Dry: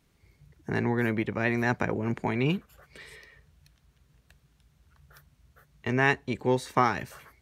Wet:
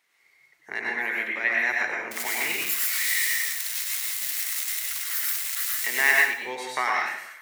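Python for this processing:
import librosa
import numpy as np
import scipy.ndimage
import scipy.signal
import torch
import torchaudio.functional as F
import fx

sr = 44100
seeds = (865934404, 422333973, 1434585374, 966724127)

y = fx.crossing_spikes(x, sr, level_db=-20.5, at=(2.11, 6.11))
y = fx.dynamic_eq(y, sr, hz=1100.0, q=1.0, threshold_db=-38.0, ratio=4.0, max_db=-4)
y = scipy.signal.sosfilt(scipy.signal.butter(2, 780.0, 'highpass', fs=sr, output='sos'), y)
y = fx.peak_eq(y, sr, hz=2000.0, db=11.0, octaves=0.37)
y = fx.rev_plate(y, sr, seeds[0], rt60_s=0.58, hf_ratio=1.0, predelay_ms=85, drr_db=-2.0)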